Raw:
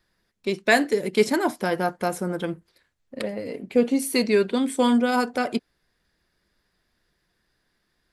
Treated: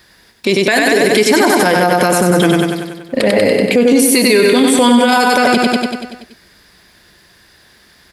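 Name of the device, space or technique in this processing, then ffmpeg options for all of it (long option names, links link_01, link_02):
mastering chain: -af "highpass=43,equalizer=frequency=1300:width_type=o:width=0.44:gain=-3,aecho=1:1:95|190|285|380|475|570|665|760:0.531|0.313|0.185|0.109|0.0643|0.038|0.0224|0.0132,acompressor=threshold=-22dB:ratio=6,tiltshelf=frequency=790:gain=-3,alimiter=level_in=23.5dB:limit=-1dB:release=50:level=0:latency=1,volume=-1dB"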